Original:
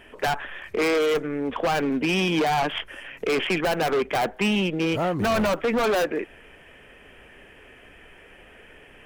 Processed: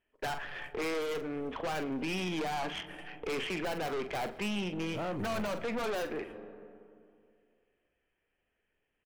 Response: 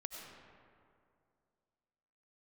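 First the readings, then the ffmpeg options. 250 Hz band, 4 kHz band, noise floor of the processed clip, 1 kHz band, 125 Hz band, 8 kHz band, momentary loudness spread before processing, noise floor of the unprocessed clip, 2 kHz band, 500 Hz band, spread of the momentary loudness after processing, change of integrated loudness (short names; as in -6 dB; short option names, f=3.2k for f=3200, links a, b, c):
-11.0 dB, -11.0 dB, -82 dBFS, -11.5 dB, -10.5 dB, -9.5 dB, 9 LU, -50 dBFS, -11.0 dB, -12.0 dB, 8 LU, -11.5 dB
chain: -filter_complex "[0:a]agate=range=-30dB:threshold=-38dB:ratio=16:detection=peak,asplit=2[a][b];[1:a]atrim=start_sample=2205,lowshelf=f=280:g=8.5[c];[b][c]afir=irnorm=-1:irlink=0,volume=-14.5dB[d];[a][d]amix=inputs=2:normalize=0,alimiter=limit=-23dB:level=0:latency=1:release=255,asplit=2[e][f];[f]adelay=44,volume=-11dB[g];[e][g]amix=inputs=2:normalize=0,aeval=exprs='(tanh(25.1*val(0)+0.35)-tanh(0.35))/25.1':c=same,volume=-3dB"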